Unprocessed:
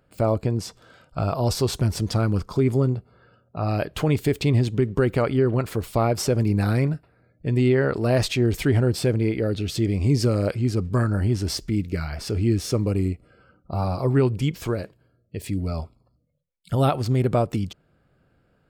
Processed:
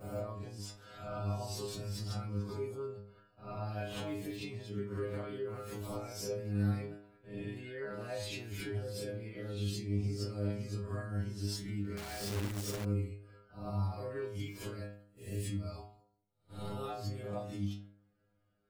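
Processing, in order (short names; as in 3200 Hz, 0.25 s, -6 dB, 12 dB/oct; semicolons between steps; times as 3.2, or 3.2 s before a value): spectral swells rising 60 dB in 0.51 s; gate -50 dBFS, range -13 dB; compressor 6:1, threshold -35 dBFS, peak gain reduction 19 dB; metallic resonator 100 Hz, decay 0.62 s, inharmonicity 0.002; 11.97–12.85 companded quantiser 4-bit; gain +10 dB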